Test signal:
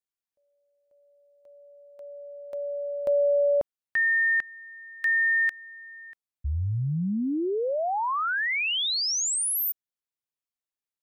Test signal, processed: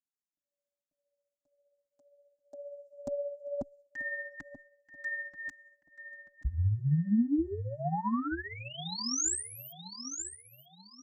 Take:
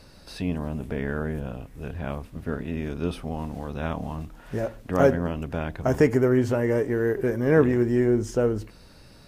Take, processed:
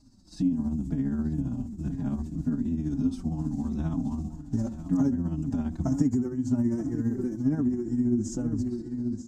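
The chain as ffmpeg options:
ffmpeg -i in.wav -filter_complex "[0:a]agate=range=-10dB:threshold=-40dB:ratio=16:release=402:detection=peak,asplit=2[link_01][link_02];[link_02]adelay=934,lowpass=frequency=5000:poles=1,volume=-13.5dB,asplit=2[link_03][link_04];[link_04]adelay=934,lowpass=frequency=5000:poles=1,volume=0.37,asplit=2[link_05][link_06];[link_06]adelay=934,lowpass=frequency=5000:poles=1,volume=0.37,asplit=2[link_07][link_08];[link_08]adelay=934,lowpass=frequency=5000:poles=1,volume=0.37[link_09];[link_01][link_03][link_05][link_07][link_09]amix=inputs=5:normalize=0,tremolo=f=15:d=0.49,acrossover=split=2600[link_10][link_11];[link_11]acompressor=threshold=-38dB:ratio=4:attack=1:release=60[link_12];[link_10][link_12]amix=inputs=2:normalize=0,firequalizer=gain_entry='entry(120,0);entry(280,9);entry(460,-22);entry(750,-8);entry(1500,-16);entry(2400,-21);entry(4400,-6);entry(7200,6);entry(10000,-13)':delay=0.05:min_phase=1,acompressor=threshold=-35dB:ratio=3:attack=91:release=123:knee=1:detection=peak,asplit=2[link_13][link_14];[link_14]adelay=4.4,afreqshift=-2[link_15];[link_13][link_15]amix=inputs=2:normalize=1,volume=7dB" out.wav

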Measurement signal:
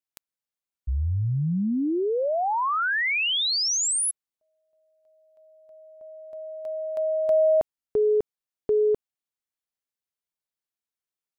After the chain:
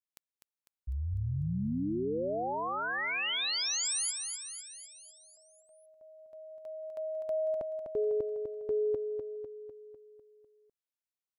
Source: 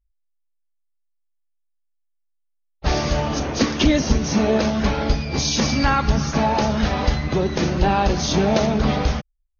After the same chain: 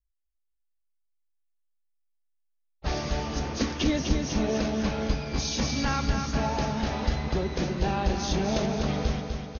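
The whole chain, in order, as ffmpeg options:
ffmpeg -i in.wav -filter_complex "[0:a]adynamicequalizer=threshold=0.0282:dfrequency=1000:dqfactor=0.92:tfrequency=1000:tqfactor=0.92:attack=5:release=100:ratio=0.375:range=1.5:mode=cutabove:tftype=bell,asplit=2[link_01][link_02];[link_02]aecho=0:1:250|500|750|1000|1250|1500|1750:0.501|0.281|0.157|0.088|0.0493|0.0276|0.0155[link_03];[link_01][link_03]amix=inputs=2:normalize=0,volume=-9dB" out.wav

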